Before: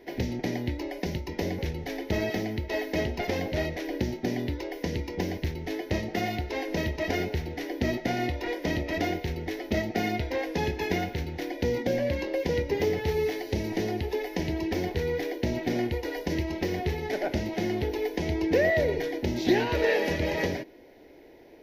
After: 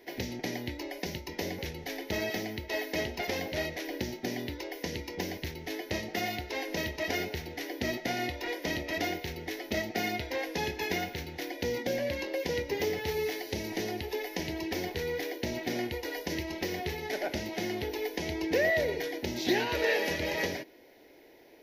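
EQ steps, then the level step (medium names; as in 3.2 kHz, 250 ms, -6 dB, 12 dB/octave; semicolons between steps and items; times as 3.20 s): tilt EQ +2 dB/octave; -2.5 dB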